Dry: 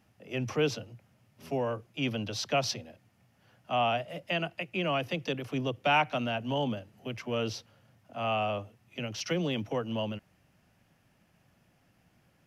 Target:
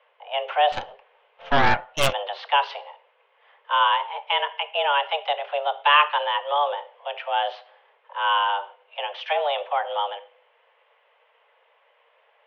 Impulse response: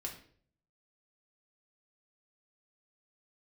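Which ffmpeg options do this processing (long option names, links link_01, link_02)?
-filter_complex "[0:a]highpass=frequency=240:width_type=q:width=0.5412,highpass=frequency=240:width_type=q:width=1.307,lowpass=frequency=3000:width_type=q:width=0.5176,lowpass=frequency=3000:width_type=q:width=0.7071,lowpass=frequency=3000:width_type=q:width=1.932,afreqshift=290,asplit=2[link_01][link_02];[1:a]atrim=start_sample=2205[link_03];[link_02][link_03]afir=irnorm=-1:irlink=0,volume=-4dB[link_04];[link_01][link_04]amix=inputs=2:normalize=0,asettb=1/sr,asplit=3[link_05][link_06][link_07];[link_05]atrim=end=0.724[link_08];[link_06]atrim=start=0.72:end=2.13,asetpts=PTS-STARTPTS,afade=type=in:duration=0.004:curve=qsin,afade=type=out:start_time=1.406:duration=0.004:curve=qsin,aeval=exprs='0.158*(cos(1*acos(clip(val(0)/0.158,-1,1)))-cos(1*PI/2))+0.00891*(cos(5*acos(clip(val(0)/0.158,-1,1)))-cos(5*PI/2))+0.0631*(cos(6*acos(clip(val(0)/0.158,-1,1)))-cos(6*PI/2))':channel_layout=same[link_09];[link_07]atrim=start=2.126[link_10];[link_08][link_09]acrossfade=duration=0.004:curve1=hsin:curve2=qsin[link_11];[link_11][link_10]acrossfade=duration=0.004:curve1=qsin:curve2=hsin,volume=6dB"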